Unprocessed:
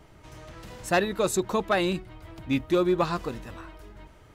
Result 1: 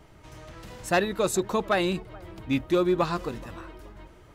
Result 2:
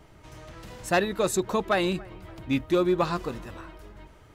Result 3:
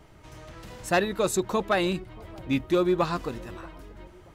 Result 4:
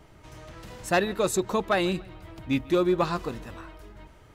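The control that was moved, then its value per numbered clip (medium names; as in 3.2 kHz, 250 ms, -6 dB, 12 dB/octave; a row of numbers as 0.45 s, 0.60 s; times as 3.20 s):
bucket-brigade echo, time: 427 ms, 283 ms, 631 ms, 144 ms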